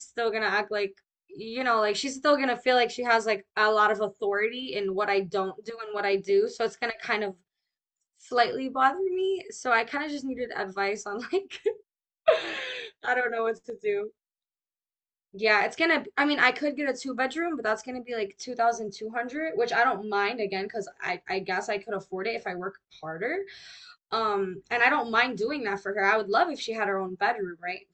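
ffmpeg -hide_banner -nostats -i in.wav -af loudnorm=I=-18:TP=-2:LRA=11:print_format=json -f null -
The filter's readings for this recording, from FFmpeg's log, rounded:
"input_i" : "-27.3",
"input_tp" : "-6.5",
"input_lra" : "4.8",
"input_thresh" : "-37.6",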